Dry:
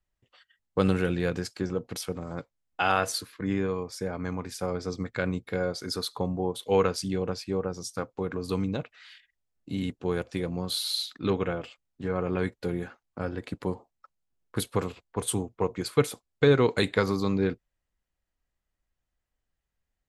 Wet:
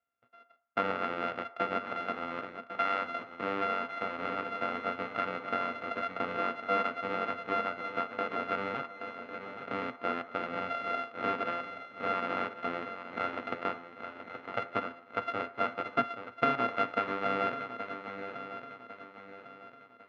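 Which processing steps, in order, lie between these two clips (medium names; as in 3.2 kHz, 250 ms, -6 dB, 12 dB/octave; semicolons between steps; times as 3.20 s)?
sorted samples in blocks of 64 samples; tilt EQ +3.5 dB/octave; compression 2:1, threshold -29 dBFS, peak gain reduction 11 dB; cabinet simulation 110–2400 Hz, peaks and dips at 120 Hz +4 dB, 170 Hz -6 dB, 250 Hz +9 dB, 480 Hz +6 dB, 1.3 kHz +8 dB, 1.9 kHz -4 dB; shuffle delay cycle 1101 ms, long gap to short 3:1, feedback 38%, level -9 dB; on a send at -12.5 dB: reverberation RT60 0.60 s, pre-delay 3 ms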